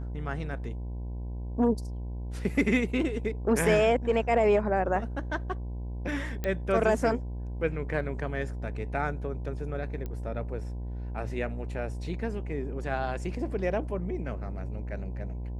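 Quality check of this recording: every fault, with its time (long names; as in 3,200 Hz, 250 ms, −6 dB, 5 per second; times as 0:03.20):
mains buzz 60 Hz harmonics 17 −35 dBFS
0:06.44: click −17 dBFS
0:10.06: click −24 dBFS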